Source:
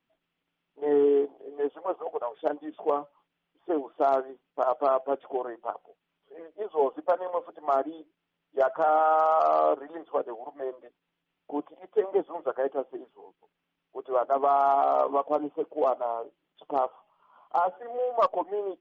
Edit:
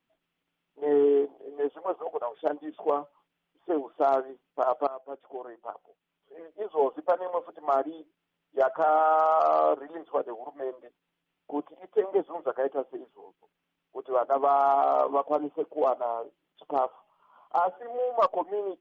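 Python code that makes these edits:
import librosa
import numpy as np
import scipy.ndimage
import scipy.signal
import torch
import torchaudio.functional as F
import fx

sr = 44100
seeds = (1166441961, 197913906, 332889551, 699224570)

y = fx.edit(x, sr, fx.fade_in_from(start_s=4.87, length_s=1.79, floor_db=-16.5), tone=tone)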